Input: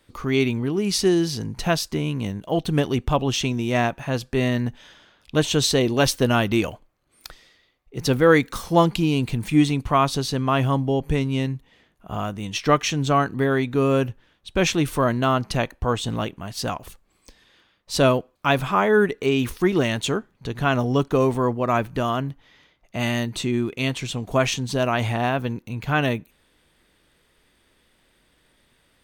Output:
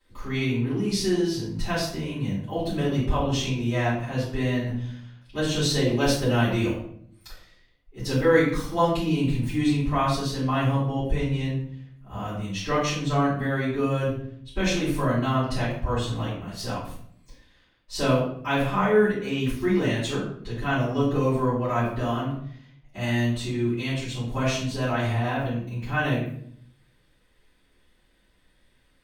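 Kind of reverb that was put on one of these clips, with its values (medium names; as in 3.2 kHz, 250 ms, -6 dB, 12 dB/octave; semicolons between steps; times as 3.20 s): simulated room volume 100 m³, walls mixed, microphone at 4 m; trim -18 dB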